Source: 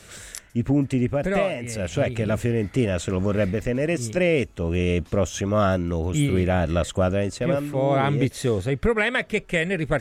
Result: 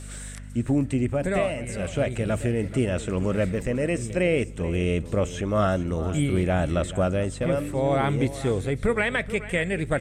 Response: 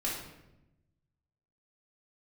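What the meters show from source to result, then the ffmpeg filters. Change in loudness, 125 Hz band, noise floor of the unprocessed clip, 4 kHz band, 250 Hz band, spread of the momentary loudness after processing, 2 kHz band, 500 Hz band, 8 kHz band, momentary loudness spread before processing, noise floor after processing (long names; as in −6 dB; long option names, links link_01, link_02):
−2.0 dB, −2.0 dB, −48 dBFS, −4.0 dB, −2.0 dB, 4 LU, −2.5 dB, −2.0 dB, −3.0 dB, 4 LU, −38 dBFS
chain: -filter_complex "[0:a]acrossover=split=3600[link_01][link_02];[link_02]acompressor=threshold=-43dB:ratio=4:attack=1:release=60[link_03];[link_01][link_03]amix=inputs=2:normalize=0,equalizer=frequency=8400:width=4.4:gain=13.5,aeval=exprs='val(0)+0.0178*(sin(2*PI*50*n/s)+sin(2*PI*2*50*n/s)/2+sin(2*PI*3*50*n/s)/3+sin(2*PI*4*50*n/s)/4+sin(2*PI*5*50*n/s)/5)':channel_layout=same,aecho=1:1:432:0.178,asplit=2[link_04][link_05];[1:a]atrim=start_sample=2205[link_06];[link_05][link_06]afir=irnorm=-1:irlink=0,volume=-26dB[link_07];[link_04][link_07]amix=inputs=2:normalize=0,volume=-2.5dB"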